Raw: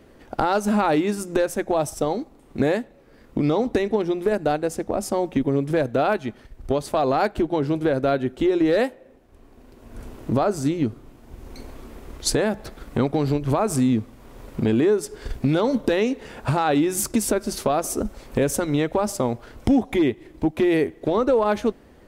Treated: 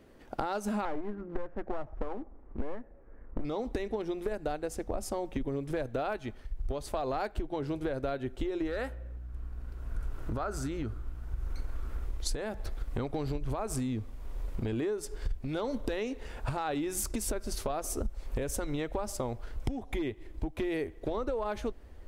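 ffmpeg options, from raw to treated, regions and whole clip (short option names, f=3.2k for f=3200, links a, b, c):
-filter_complex "[0:a]asettb=1/sr,asplit=3[a][b][c];[a]atrim=end=0.854[d];[b]atrim=start=0.85:end=3.45,asetpts=PTS-STARTPTS,afade=t=in:d=0.004:c=qsin,afade=t=out:st=2.596:d=0.004:c=qsin,lowpass=f=1.8k:w=0.5412,lowpass=f=1.8k:w=1.3066,aeval=exprs='clip(val(0),-1,0.0398)':c=same,aemphasis=mode=reproduction:type=50fm[e];[c]atrim=start=3.446[f];[d][e]acrossfade=d=0.004:c1=hsin:c2=qsin[g];[g][f]acrossfade=d=0.004:c1=qsin:c2=hsin,asettb=1/sr,asplit=3[h][i][j];[h]atrim=end=8.674[k];[i]atrim=start=8.67:end=12.05,asetpts=PTS-STARTPTS,afade=t=in:d=0.004:c=qsin,afade=t=out:st=3.376:d=0.004:c=qsin,equalizer=f=1.4k:t=o:w=0.53:g=11,acompressor=threshold=-21dB:ratio=3:attack=3.2:release=140:knee=1:detection=peak,aeval=exprs='val(0)+0.00708*(sin(2*PI*60*n/s)+sin(2*PI*2*60*n/s)/2+sin(2*PI*3*60*n/s)/3+sin(2*PI*4*60*n/s)/4+sin(2*PI*5*60*n/s)/5)':c=same[l];[j]atrim=start=12.046[m];[k][l]acrossfade=d=0.004:c1=hsin:c2=qsin[n];[n][m]acrossfade=d=0.004:c1=qsin:c2=hsin,asubboost=boost=9:cutoff=57,acompressor=threshold=-22dB:ratio=6,volume=-7dB"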